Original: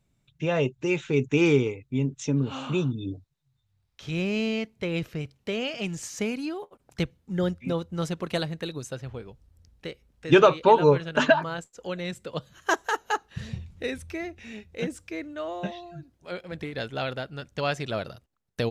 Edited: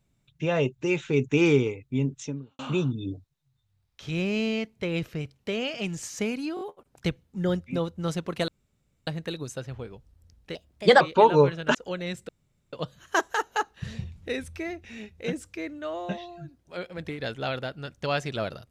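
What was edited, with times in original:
0:02.16–0:02.59: fade out quadratic
0:06.55: stutter 0.02 s, 4 plays
0:08.42: splice in room tone 0.59 s
0:09.90–0:10.49: play speed 129%
0:11.23–0:11.73: remove
0:12.27: splice in room tone 0.44 s

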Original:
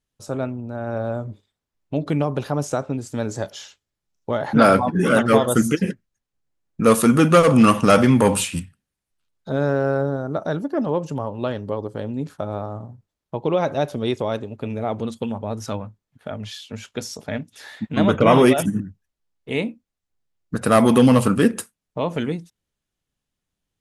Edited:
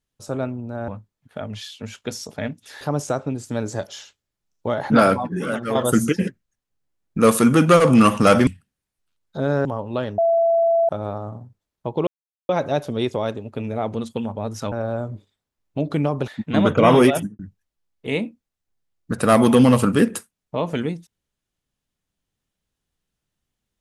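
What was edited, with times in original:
0:00.88–0:02.44: swap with 0:15.78–0:17.71
0:04.57–0:05.38: fade out quadratic, to −10 dB
0:08.10–0:08.59: remove
0:09.77–0:11.13: remove
0:11.66–0:12.37: beep over 669 Hz −14 dBFS
0:13.55: splice in silence 0.42 s
0:18.54–0:18.82: fade out and dull

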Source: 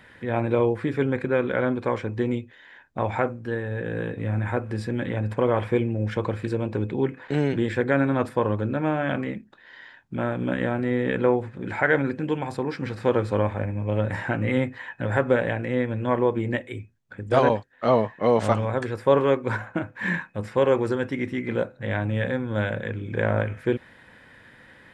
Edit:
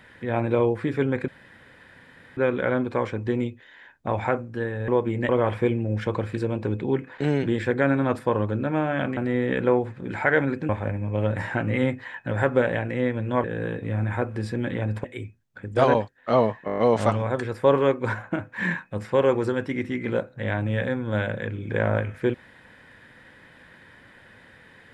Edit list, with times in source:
0:01.28: splice in room tone 1.09 s
0:03.79–0:05.39: swap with 0:16.18–0:16.59
0:09.27–0:10.74: remove
0:12.26–0:13.43: remove
0:18.21: stutter 0.02 s, 7 plays

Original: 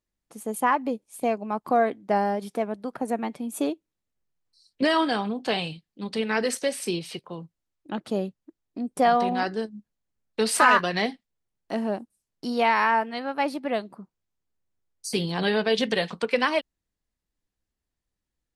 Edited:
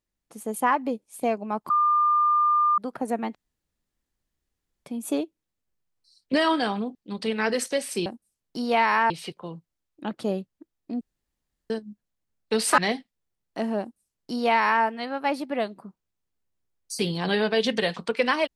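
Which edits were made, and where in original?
0:01.70–0:02.78: beep over 1,200 Hz −17.5 dBFS
0:03.35: splice in room tone 1.51 s
0:05.44–0:05.86: remove
0:08.88–0:09.57: fill with room tone
0:10.65–0:10.92: remove
0:11.94–0:12.98: duplicate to 0:06.97

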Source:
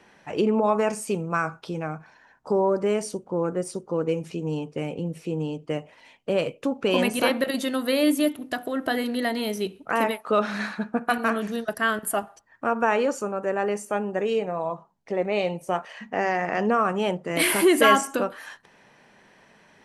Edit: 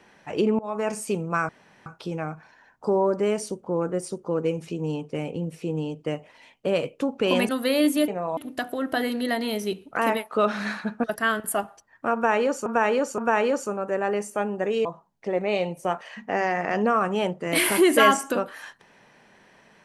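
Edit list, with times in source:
0:00.59–0:00.97: fade in, from −23 dB
0:01.49: splice in room tone 0.37 s
0:07.12–0:07.72: remove
0:10.98–0:11.63: remove
0:12.73–0:13.25: repeat, 3 plays
0:14.40–0:14.69: move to 0:08.31

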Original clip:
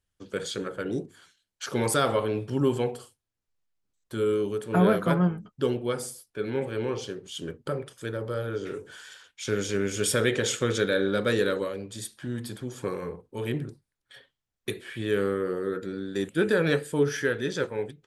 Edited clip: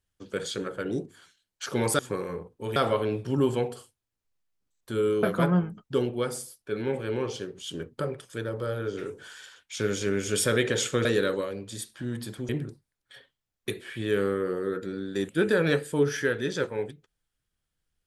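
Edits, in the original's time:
0:04.46–0:04.91: remove
0:10.73–0:11.28: remove
0:12.72–0:13.49: move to 0:01.99

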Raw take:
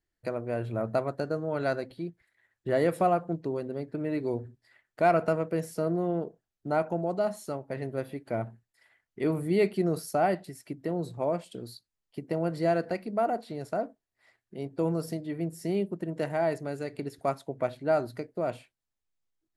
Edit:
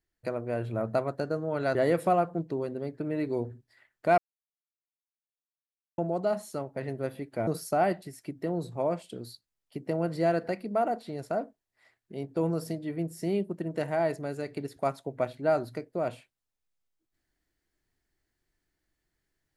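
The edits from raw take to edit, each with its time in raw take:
0:01.75–0:02.69: remove
0:05.12–0:06.92: silence
0:08.41–0:09.89: remove

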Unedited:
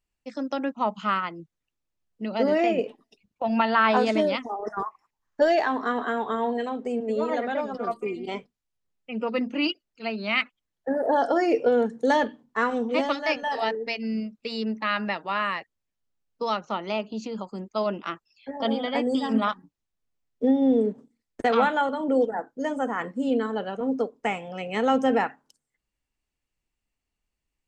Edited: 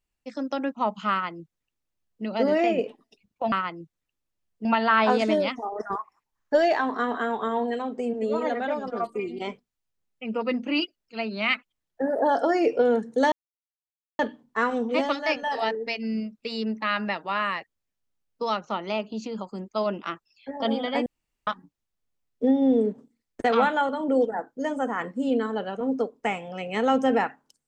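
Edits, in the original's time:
0:01.11–0:02.24: duplicate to 0:03.52
0:12.19: splice in silence 0.87 s
0:19.06–0:19.47: fill with room tone

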